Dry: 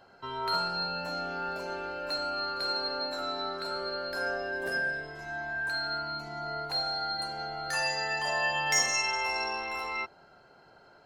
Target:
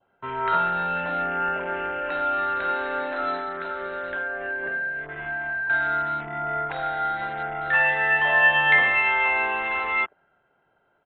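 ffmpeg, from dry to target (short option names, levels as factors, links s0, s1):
-filter_complex "[0:a]afwtdn=0.00794,adynamicequalizer=threshold=0.00447:dfrequency=1800:dqfactor=1.7:tfrequency=1800:tqfactor=1.7:attack=5:release=100:ratio=0.375:range=4:mode=boostabove:tftype=bell,asettb=1/sr,asplit=3[s0][s1][s2];[s0]atrim=end=3.364[s3];[s1]atrim=start=3.36:end=5.7,asetpts=PTS-STARTPTS,afade=t=in:d=0.004:c=qsin,afade=t=out:st=2.336:d=0.004:c=qsin,acompressor=threshold=0.0224:ratio=6[s4];[s2]atrim=start=5.696[s5];[s3][s4]acrossfade=d=0.004:c1=hsin:c2=qsin[s6];[s6][s5]acrossfade=d=0.004:c1=qsin:c2=hsin,aresample=8000,aresample=44100,volume=2"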